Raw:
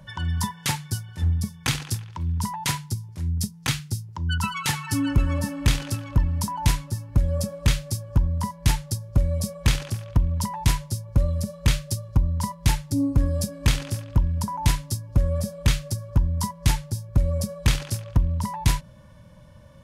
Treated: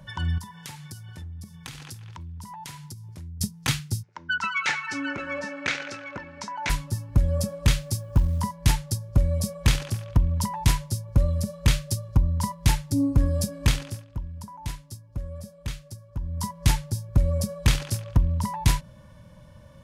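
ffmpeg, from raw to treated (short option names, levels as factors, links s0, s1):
-filter_complex "[0:a]asettb=1/sr,asplit=3[s0][s1][s2];[s0]atrim=end=0.384[s3];[s1]atrim=start=0.38:end=3.41,asetpts=PTS-STARTPTS,afade=t=in:d=0.004:c=qsin,afade=t=out:st=3.026:d=0.004:c=qsin,acompressor=threshold=0.0141:ratio=6:attack=3.2:release=140:knee=1:detection=peak[s4];[s2]atrim=start=3.406[s5];[s3][s4]acrossfade=d=0.004:c1=hsin:c2=qsin[s6];[s6][s5]acrossfade=d=0.004:c1=qsin:c2=hsin,asplit=3[s7][s8][s9];[s7]afade=t=out:st=4.02:d=0.02[s10];[s8]highpass=420,equalizer=f=560:t=q:w=4:g=3,equalizer=f=1000:t=q:w=4:g=-5,equalizer=f=1500:t=q:w=4:g=8,equalizer=f=2200:t=q:w=4:g=8,equalizer=f=3200:t=q:w=4:g=-4,equalizer=f=4800:t=q:w=4:g=-5,lowpass=f=5900:w=0.5412,lowpass=f=5900:w=1.3066,afade=t=in:st=4.02:d=0.02,afade=t=out:st=6.69:d=0.02[s11];[s9]afade=t=in:st=6.69:d=0.02[s12];[s10][s11][s12]amix=inputs=3:normalize=0,asettb=1/sr,asplit=3[s13][s14][s15];[s13]atrim=end=7.824[s16];[s14]atrim=start=7.82:end=8.42,asetpts=PTS-STARTPTS,afade=t=in:d=0.004:c=qsin,afade=t=out:st=0.596:d=0.004:c=qsin,acrusher=bits=9:mode=log:mix=0:aa=0.000001[s17];[s15]atrim=start=8.416[s18];[s16][s17]acrossfade=d=0.004:c1=hsin:c2=qsin[s19];[s19][s18]acrossfade=d=0.004:c1=qsin:c2=hsin,asplit=3[s20][s21][s22];[s20]atrim=end=14.08,asetpts=PTS-STARTPTS,afade=t=out:st=13.62:d=0.46:silence=0.237137[s23];[s21]atrim=start=14.08:end=16.17,asetpts=PTS-STARTPTS,volume=0.237[s24];[s22]atrim=start=16.17,asetpts=PTS-STARTPTS,afade=t=in:d=0.46:silence=0.237137[s25];[s23][s24][s25]concat=n=3:v=0:a=1"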